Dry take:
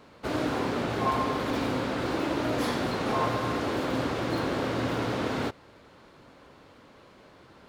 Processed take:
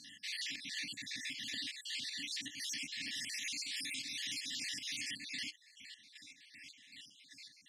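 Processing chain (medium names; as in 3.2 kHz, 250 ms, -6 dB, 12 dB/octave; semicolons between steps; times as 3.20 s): random holes in the spectrogram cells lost 53%; 3.15–5.15 s: treble shelf 3.3 kHz +11 dB; FFT band-reject 310–1700 Hz; square tremolo 2.6 Hz, depth 65%, duty 45%; compression 6:1, threshold -42 dBFS, peak gain reduction 14 dB; frequency weighting ITU-R 468; peak limiter -37 dBFS, peak gain reduction 12.5 dB; trim +5 dB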